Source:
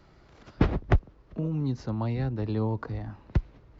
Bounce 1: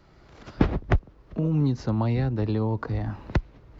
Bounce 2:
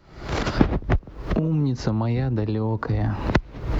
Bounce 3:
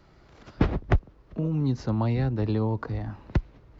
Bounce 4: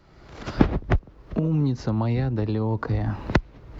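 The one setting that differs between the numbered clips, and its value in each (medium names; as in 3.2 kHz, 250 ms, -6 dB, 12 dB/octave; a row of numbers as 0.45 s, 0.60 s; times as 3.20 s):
recorder AGC, rising by: 14 dB/s, 91 dB/s, 5 dB/s, 36 dB/s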